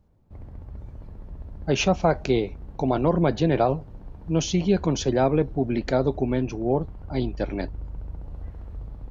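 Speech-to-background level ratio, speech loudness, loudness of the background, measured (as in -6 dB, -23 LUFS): 16.5 dB, -24.5 LUFS, -41.0 LUFS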